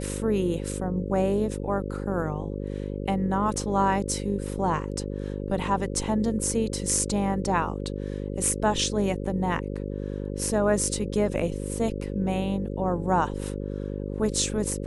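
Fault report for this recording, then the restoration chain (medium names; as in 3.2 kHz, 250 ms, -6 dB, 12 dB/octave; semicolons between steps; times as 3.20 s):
buzz 50 Hz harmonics 11 -32 dBFS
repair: de-hum 50 Hz, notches 11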